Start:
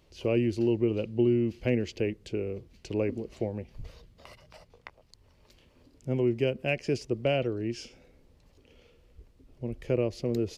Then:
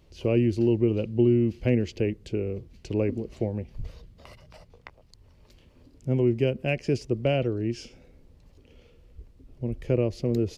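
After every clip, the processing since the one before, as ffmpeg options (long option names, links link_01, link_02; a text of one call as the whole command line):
ffmpeg -i in.wav -af "lowshelf=frequency=300:gain=7" out.wav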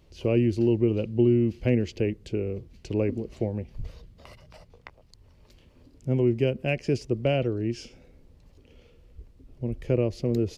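ffmpeg -i in.wav -af anull out.wav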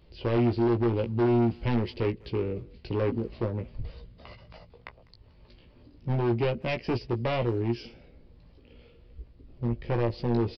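ffmpeg -i in.wav -filter_complex "[0:a]aresample=11025,asoftclip=type=hard:threshold=-23.5dB,aresample=44100,asplit=2[link_01][link_02];[link_02]adelay=17,volume=-5.5dB[link_03];[link_01][link_03]amix=inputs=2:normalize=0,asplit=2[link_04][link_05];[link_05]adelay=200,highpass=300,lowpass=3400,asoftclip=type=hard:threshold=-28.5dB,volume=-23dB[link_06];[link_04][link_06]amix=inputs=2:normalize=0" out.wav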